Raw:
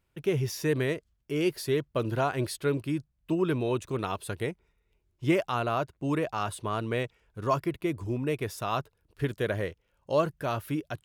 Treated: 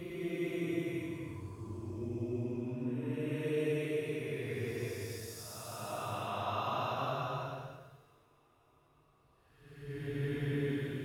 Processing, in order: two-slope reverb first 0.33 s, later 3.4 s, from -21 dB, DRR 17.5 dB; Paulstretch 7.2×, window 0.25 s, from 7.79 s; trim -6.5 dB

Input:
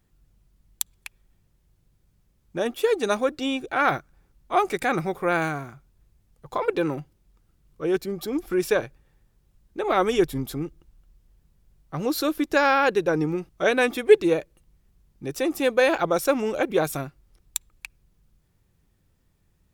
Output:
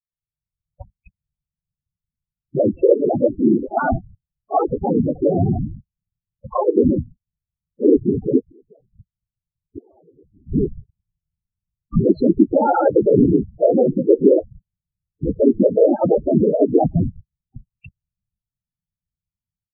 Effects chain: median filter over 25 samples; gate -47 dBFS, range -45 dB; bass shelf 120 Hz +10 dB; peak limiter -15.5 dBFS, peak gain reduction 11 dB; level rider gain up to 16.5 dB; 8.39–10.47 s: inverted gate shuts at -15 dBFS, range -37 dB; whisper effect; loudest bins only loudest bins 8; distance through air 220 m; trim -1.5 dB

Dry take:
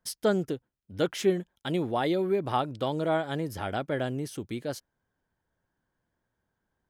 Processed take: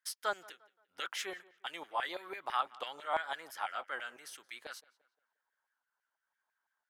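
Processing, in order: pitch shift switched off and on -1 st, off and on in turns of 522 ms; LFO high-pass saw down 6 Hz 820–2000 Hz; tape echo 174 ms, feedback 40%, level -21 dB, low-pass 3.1 kHz; trim -5 dB

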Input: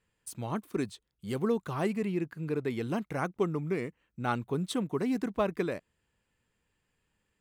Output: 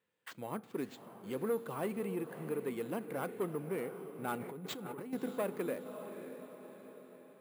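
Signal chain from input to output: peaking EQ 510 Hz +5.5 dB 0.42 oct; echo that smears into a reverb 597 ms, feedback 51%, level -12 dB; saturation -23 dBFS, distortion -15 dB; 4.36–5.13 s: compressor with a negative ratio -37 dBFS, ratio -1; on a send at -18 dB: low-pass 7.9 kHz + reverberation RT60 0.85 s, pre-delay 3 ms; on the sum: careless resampling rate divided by 4×, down none, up hold; high-pass 190 Hz 12 dB/octave; peaking EQ 5.8 kHz -5 dB 0.96 oct; trim -5 dB

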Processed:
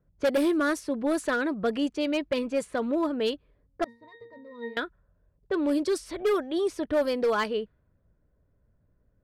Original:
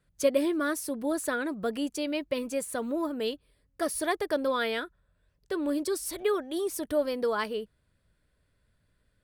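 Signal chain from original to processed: level-controlled noise filter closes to 780 Hz, open at -23 dBFS; hard clipper -23.5 dBFS, distortion -14 dB; 3.84–4.77 s: pitch-class resonator A#, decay 0.35 s; trim +4 dB

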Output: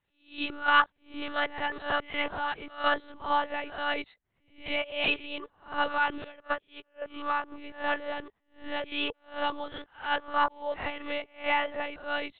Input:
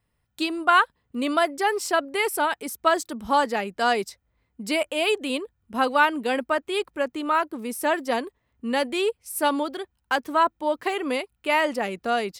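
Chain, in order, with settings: reverse spectral sustain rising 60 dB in 0.38 s; tremolo triangle 2.8 Hz, depth 50%; monotone LPC vocoder at 8 kHz 290 Hz; bass shelf 380 Hz -8.5 dB; 6.24–7.02 s: upward expansion 2.5:1, over -38 dBFS; trim -3 dB

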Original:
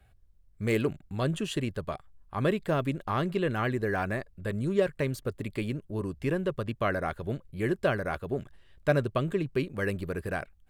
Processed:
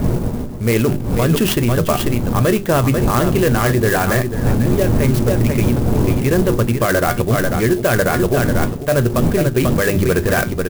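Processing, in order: wind noise 220 Hz -33 dBFS; feedback comb 120 Hz, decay 0.17 s, harmonics all, mix 60%; delay 492 ms -10 dB; reverse; compression 12:1, threshold -37 dBFS, peak gain reduction 15.5 dB; reverse; hum notches 50/100/150/200/250/300/350/400 Hz; loudness maximiser +33 dB; sampling jitter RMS 0.049 ms; trim -5 dB

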